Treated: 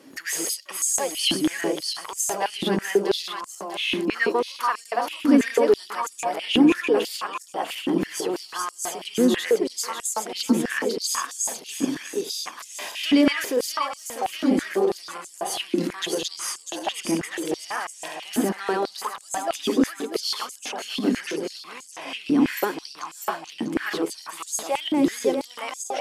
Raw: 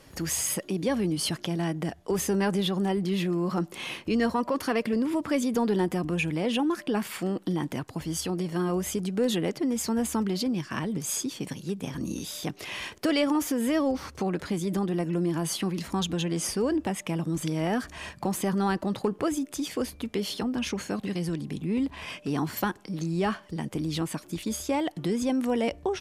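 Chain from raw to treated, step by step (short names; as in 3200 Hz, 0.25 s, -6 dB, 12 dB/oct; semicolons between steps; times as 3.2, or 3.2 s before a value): regenerating reverse delay 0.323 s, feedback 58%, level -2 dB; stepped high-pass 6.1 Hz 270–7300 Hz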